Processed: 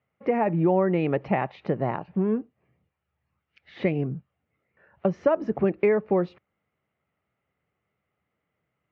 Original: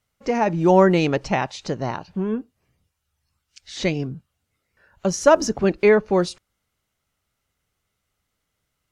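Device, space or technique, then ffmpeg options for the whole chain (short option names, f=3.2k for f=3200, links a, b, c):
bass amplifier: -af "acompressor=threshold=-21dB:ratio=4,highpass=f=85:w=0.5412,highpass=f=85:w=1.3066,equalizer=f=98:t=q:w=4:g=-9,equalizer=f=260:t=q:w=4:g=-3,equalizer=f=970:t=q:w=4:g=-4,equalizer=f=1.5k:t=q:w=4:g=-7,lowpass=f=2.2k:w=0.5412,lowpass=f=2.2k:w=1.3066,volume=2.5dB"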